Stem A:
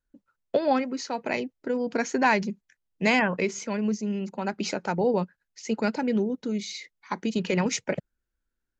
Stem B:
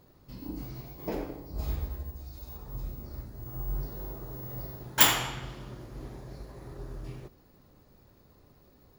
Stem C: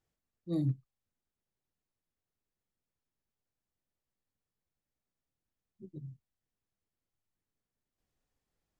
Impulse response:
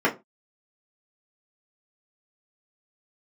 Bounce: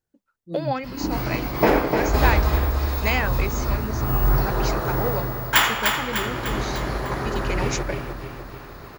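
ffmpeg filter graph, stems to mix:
-filter_complex "[0:a]highpass=f=540:p=1,volume=0dB[a];[1:a]equalizer=f=1.5k:w=0.55:g=13,dynaudnorm=f=130:g=7:m=14dB,adelay=550,volume=-0.5dB,asplit=2[b][c];[c]volume=-5dB[d];[2:a]equalizer=f=2.4k:w=0.59:g=-10.5,volume=0.5dB[e];[d]aecho=0:1:300|600|900|1200|1500|1800|2100|2400:1|0.54|0.292|0.157|0.085|0.0459|0.0248|0.0134[f];[a][b][e][f]amix=inputs=4:normalize=0"

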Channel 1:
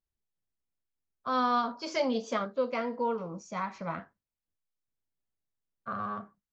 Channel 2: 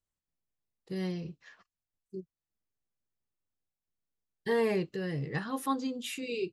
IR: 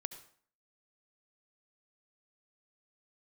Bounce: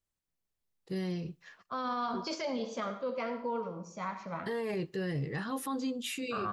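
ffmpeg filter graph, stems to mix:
-filter_complex "[0:a]adelay=450,volume=3dB,asplit=2[a][b];[b]volume=-4.5dB[c];[1:a]volume=0.5dB,asplit=3[d][e][f];[e]volume=-21.5dB[g];[f]apad=whole_len=307803[h];[a][h]sidechaingate=range=-33dB:threshold=-55dB:ratio=16:detection=peak[i];[2:a]atrim=start_sample=2205[j];[c][g]amix=inputs=2:normalize=0[k];[k][j]afir=irnorm=-1:irlink=0[l];[i][d][l]amix=inputs=3:normalize=0,alimiter=level_in=3dB:limit=-24dB:level=0:latency=1:release=10,volume=-3dB"

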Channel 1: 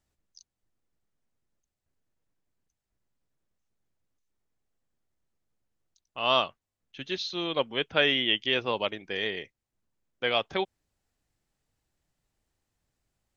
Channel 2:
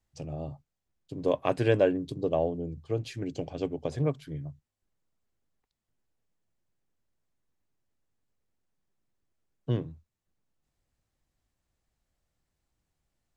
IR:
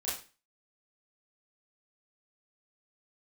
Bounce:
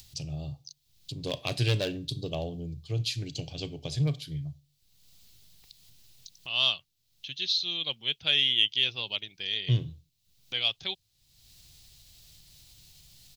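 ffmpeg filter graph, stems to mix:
-filter_complex "[0:a]adelay=300,volume=-7.5dB[a];[1:a]asoftclip=type=hard:threshold=-16.5dB,volume=-1dB,asplit=2[b][c];[c]volume=-18dB[d];[2:a]atrim=start_sample=2205[e];[d][e]afir=irnorm=-1:irlink=0[f];[a][b][f]amix=inputs=3:normalize=0,equalizer=f=125:t=o:w=1:g=7,equalizer=f=250:t=o:w=1:g=-7,equalizer=f=500:t=o:w=1:g=-7,equalizer=f=1k:t=o:w=1:g=-6,equalizer=f=2k:t=o:w=1:g=-7,equalizer=f=4k:t=o:w=1:g=11,equalizer=f=8k:t=o:w=1:g=-6,acompressor=mode=upward:threshold=-42dB:ratio=2.5,aexciter=amount=2.7:drive=4.9:freq=2.1k"

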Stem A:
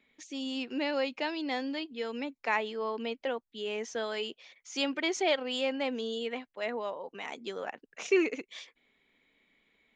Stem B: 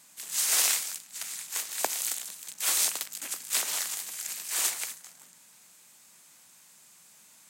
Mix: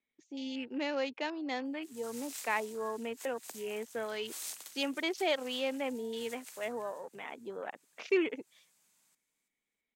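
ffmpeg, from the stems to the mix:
-filter_complex "[0:a]afwtdn=0.00794,volume=-3dB,asplit=2[a][b];[1:a]acrossover=split=500|3000[c][d][e];[d]acompressor=threshold=-35dB:ratio=6[f];[c][f][e]amix=inputs=3:normalize=0,adelay=1650,volume=-15.5dB,asplit=2[g][h];[h]volume=-13.5dB[i];[b]apad=whole_len=403454[j];[g][j]sidechaincompress=threshold=-47dB:ratio=8:attack=21:release=125[k];[i]aecho=0:1:332|664|996|1328|1660:1|0.33|0.109|0.0359|0.0119[l];[a][k][l]amix=inputs=3:normalize=0"

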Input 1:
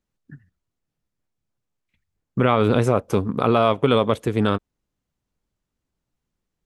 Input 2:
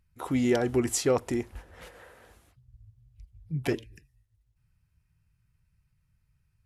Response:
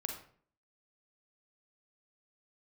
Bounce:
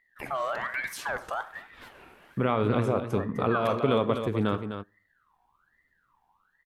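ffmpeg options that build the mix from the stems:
-filter_complex "[0:a]dynaudnorm=f=260:g=5:m=10dB,volume=-14dB,asplit=3[a][b][c];[b]volume=-5dB[d];[c]volume=-5.5dB[e];[1:a]alimiter=limit=-24dB:level=0:latency=1:release=85,aeval=exprs='val(0)*sin(2*PI*1400*n/s+1400*0.4/1.2*sin(2*PI*1.2*n/s))':c=same,volume=0dB,asplit=4[f][g][h][i];[g]volume=-6.5dB[j];[h]volume=-18dB[k];[i]apad=whole_len=293266[l];[a][l]sidechaincompress=threshold=-39dB:ratio=8:attack=39:release=163[m];[2:a]atrim=start_sample=2205[n];[d][j]amix=inputs=2:normalize=0[o];[o][n]afir=irnorm=-1:irlink=0[p];[e][k]amix=inputs=2:normalize=0,aecho=0:1:255:1[q];[m][f][p][q]amix=inputs=4:normalize=0,equalizer=f=7.4k:t=o:w=1.7:g=-7"

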